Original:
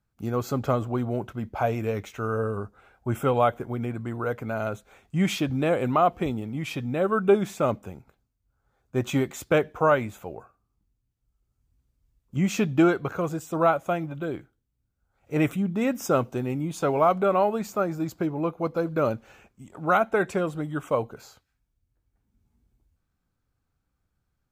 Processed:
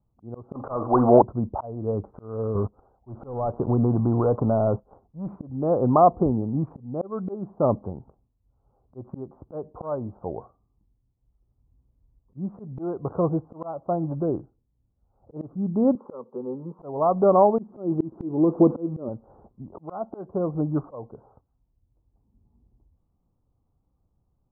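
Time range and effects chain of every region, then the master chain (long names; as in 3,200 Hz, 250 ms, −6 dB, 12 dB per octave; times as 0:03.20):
0:00.55–0:01.22: parametric band 2,600 Hz +11.5 dB 2.5 octaves + mid-hump overdrive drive 21 dB, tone 2,200 Hz, clips at −5 dBFS + double-tracking delay 47 ms −12 dB
0:02.55–0:05.36: leveller curve on the samples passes 3 + downward compressor 2 to 1, threshold −29 dBFS
0:15.95–0:16.79: Chebyshev high-pass filter 330 Hz + phaser with its sweep stopped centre 460 Hz, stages 8
0:17.58–0:19.09: spike at every zero crossing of −21.5 dBFS + downward compressor 10 to 1, threshold −25 dBFS + hollow resonant body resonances 240/340 Hz, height 14 dB, ringing for 30 ms
whole clip: adaptive Wiener filter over 15 samples; Butterworth low-pass 1,100 Hz 48 dB per octave; volume swells 480 ms; level +6 dB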